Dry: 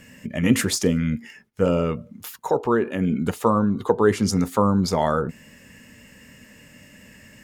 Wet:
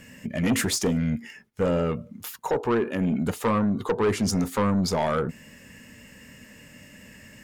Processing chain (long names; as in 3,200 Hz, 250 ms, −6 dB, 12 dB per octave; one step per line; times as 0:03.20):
soft clipping −17.5 dBFS, distortion −11 dB